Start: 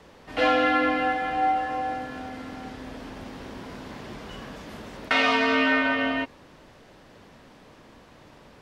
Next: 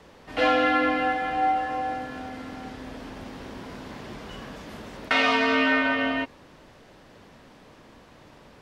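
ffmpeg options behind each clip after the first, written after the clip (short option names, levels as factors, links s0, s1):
-af anull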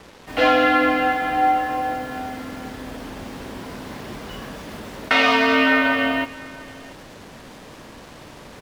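-af "areverse,acompressor=mode=upward:threshold=0.01:ratio=2.5,areverse,acrusher=bits=7:mix=0:aa=0.5,aecho=1:1:685:0.0841,volume=1.78"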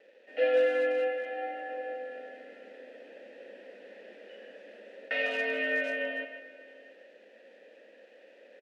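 -filter_complex "[0:a]asplit=3[s0][s1][s2];[s0]bandpass=f=530:t=q:w=8,volume=1[s3];[s1]bandpass=f=1840:t=q:w=8,volume=0.501[s4];[s2]bandpass=f=2480:t=q:w=8,volume=0.355[s5];[s3][s4][s5]amix=inputs=3:normalize=0,asplit=2[s6][s7];[s7]adelay=150,highpass=300,lowpass=3400,asoftclip=type=hard:threshold=0.075,volume=0.447[s8];[s6][s8]amix=inputs=2:normalize=0,afftfilt=real='re*between(b*sr/4096,190,12000)':imag='im*between(b*sr/4096,190,12000)':win_size=4096:overlap=0.75,volume=0.668"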